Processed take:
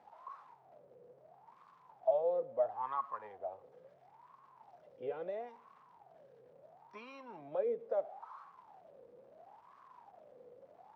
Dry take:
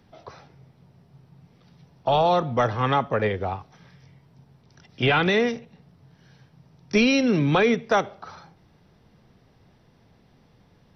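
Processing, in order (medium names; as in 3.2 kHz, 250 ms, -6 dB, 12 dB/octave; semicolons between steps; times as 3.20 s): jump at every zero crossing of -32.5 dBFS; wah-wah 0.74 Hz 490–1100 Hz, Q 14; trim -3.5 dB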